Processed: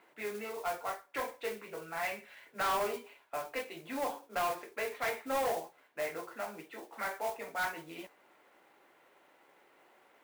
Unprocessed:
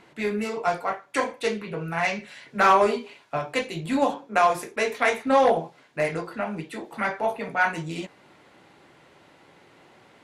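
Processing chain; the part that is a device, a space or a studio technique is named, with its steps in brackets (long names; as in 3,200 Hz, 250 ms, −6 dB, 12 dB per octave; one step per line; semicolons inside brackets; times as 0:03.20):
carbon microphone (band-pass filter 400–2,800 Hz; soft clipping −20 dBFS, distortion −10 dB; noise that follows the level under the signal 14 dB)
level −8 dB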